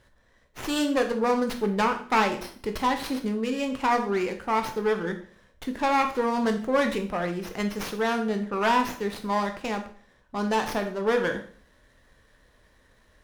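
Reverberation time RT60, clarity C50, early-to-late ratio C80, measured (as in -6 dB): 0.45 s, 10.0 dB, 14.0 dB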